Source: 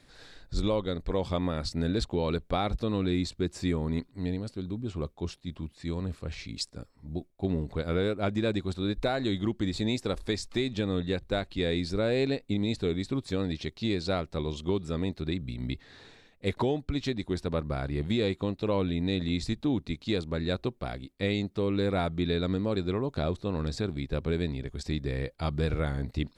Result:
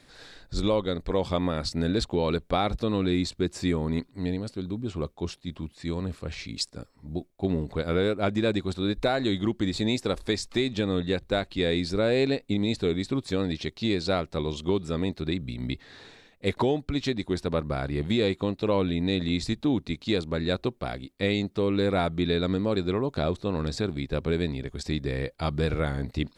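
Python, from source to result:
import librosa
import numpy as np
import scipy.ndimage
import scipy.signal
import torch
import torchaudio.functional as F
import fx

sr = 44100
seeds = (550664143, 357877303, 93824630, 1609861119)

y = fx.low_shelf(x, sr, hz=120.0, db=-5.5)
y = y * 10.0 ** (4.0 / 20.0)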